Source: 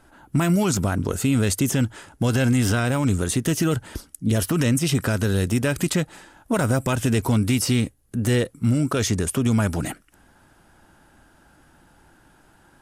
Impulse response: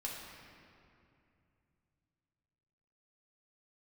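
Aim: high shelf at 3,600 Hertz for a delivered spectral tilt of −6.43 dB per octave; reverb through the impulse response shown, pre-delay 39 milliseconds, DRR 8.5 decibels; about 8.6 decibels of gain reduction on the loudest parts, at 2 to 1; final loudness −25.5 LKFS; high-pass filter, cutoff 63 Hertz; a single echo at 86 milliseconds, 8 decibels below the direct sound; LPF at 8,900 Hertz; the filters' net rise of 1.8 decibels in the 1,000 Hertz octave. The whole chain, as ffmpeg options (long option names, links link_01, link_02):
-filter_complex "[0:a]highpass=63,lowpass=8900,equalizer=frequency=1000:width_type=o:gain=3,highshelf=frequency=3600:gain=-5,acompressor=threshold=-32dB:ratio=2,aecho=1:1:86:0.398,asplit=2[link_01][link_02];[1:a]atrim=start_sample=2205,adelay=39[link_03];[link_02][link_03]afir=irnorm=-1:irlink=0,volume=-9dB[link_04];[link_01][link_04]amix=inputs=2:normalize=0,volume=4dB"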